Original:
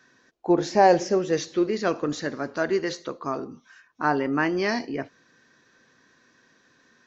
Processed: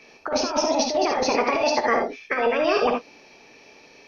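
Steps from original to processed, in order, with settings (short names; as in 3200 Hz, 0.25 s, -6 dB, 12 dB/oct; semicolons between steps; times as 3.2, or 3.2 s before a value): nonlinear frequency compression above 1000 Hz 1.5:1; low shelf 140 Hz +6.5 dB; negative-ratio compressor -28 dBFS, ratio -1; non-linear reverb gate 0.16 s rising, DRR 3.5 dB; speed mistake 45 rpm record played at 78 rpm; gain +4.5 dB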